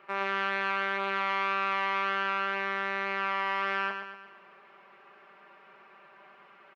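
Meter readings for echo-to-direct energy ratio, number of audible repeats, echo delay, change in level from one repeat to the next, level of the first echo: −5.5 dB, 5, 117 ms, −6.0 dB, −7.0 dB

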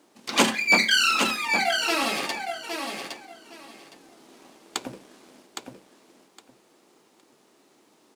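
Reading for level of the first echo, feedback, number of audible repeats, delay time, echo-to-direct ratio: −6.0 dB, 19%, 3, 813 ms, −6.0 dB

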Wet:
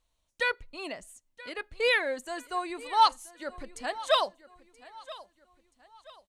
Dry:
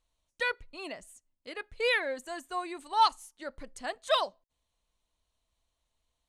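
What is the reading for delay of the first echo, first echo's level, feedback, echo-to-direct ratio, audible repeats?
978 ms, −19.0 dB, 39%, −18.5 dB, 2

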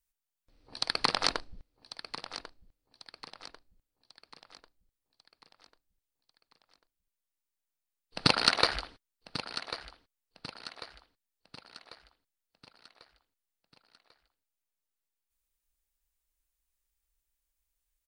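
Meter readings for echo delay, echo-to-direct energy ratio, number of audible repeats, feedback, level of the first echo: 1,094 ms, −12.0 dB, 4, 47%, −13.0 dB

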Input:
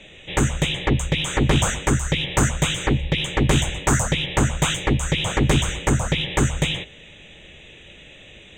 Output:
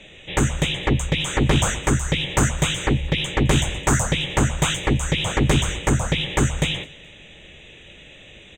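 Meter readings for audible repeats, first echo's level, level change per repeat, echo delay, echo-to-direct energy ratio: 2, −23.0 dB, −9.5 dB, 213 ms, −22.5 dB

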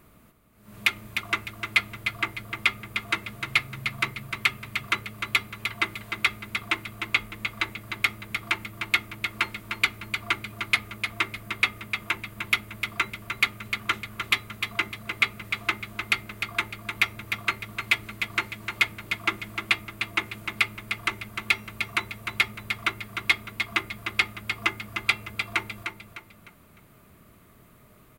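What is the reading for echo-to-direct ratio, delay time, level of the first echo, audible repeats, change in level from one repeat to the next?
−6.5 dB, 303 ms, −7.0 dB, 4, −9.0 dB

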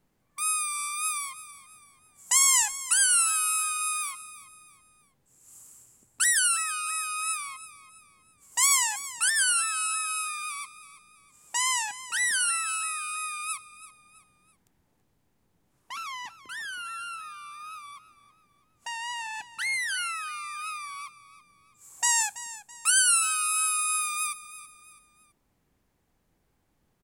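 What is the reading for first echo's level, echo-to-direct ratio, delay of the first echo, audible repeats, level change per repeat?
−15.5 dB, −15.0 dB, 330 ms, 3, −8.0 dB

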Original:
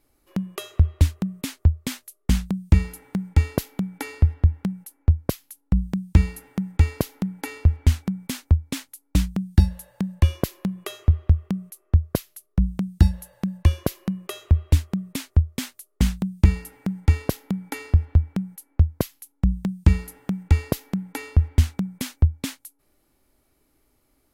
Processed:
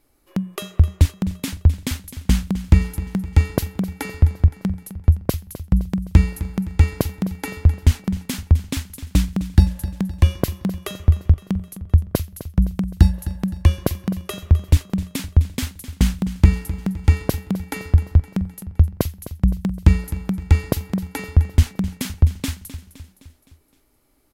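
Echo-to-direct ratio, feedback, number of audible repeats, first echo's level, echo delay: −13.0 dB, 53%, 4, −14.5 dB, 258 ms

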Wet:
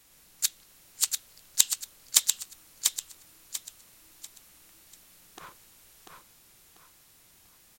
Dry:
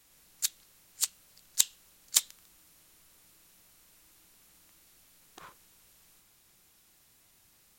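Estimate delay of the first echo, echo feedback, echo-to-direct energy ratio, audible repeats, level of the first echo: 692 ms, 32%, −4.0 dB, 4, −4.5 dB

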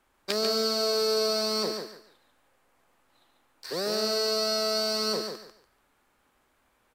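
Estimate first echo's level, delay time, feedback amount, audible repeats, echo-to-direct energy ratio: −6.0 dB, 144 ms, 23%, 3, −6.0 dB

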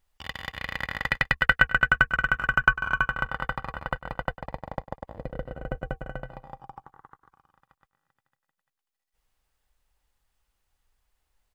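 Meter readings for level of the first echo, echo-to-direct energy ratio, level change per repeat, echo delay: −17.0 dB, −16.5 dB, −8.5 dB, 100 ms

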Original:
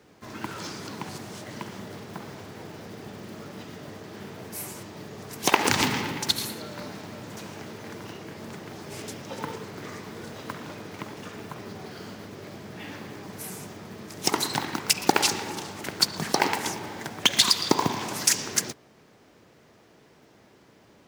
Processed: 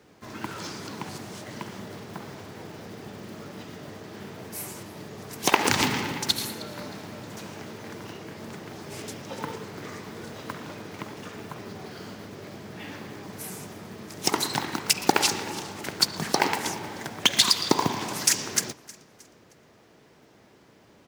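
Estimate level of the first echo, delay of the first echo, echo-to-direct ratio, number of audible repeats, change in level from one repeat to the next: −21.5 dB, 312 ms, −20.5 dB, 2, −7.5 dB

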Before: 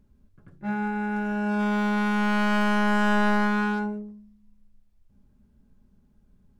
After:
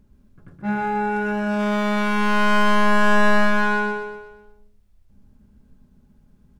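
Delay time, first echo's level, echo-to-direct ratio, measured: 122 ms, −4.0 dB, −3.0 dB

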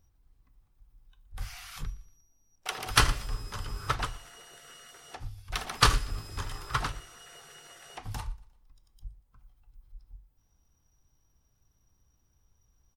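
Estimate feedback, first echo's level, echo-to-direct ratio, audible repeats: 40%, −22.5 dB, −22.0 dB, 2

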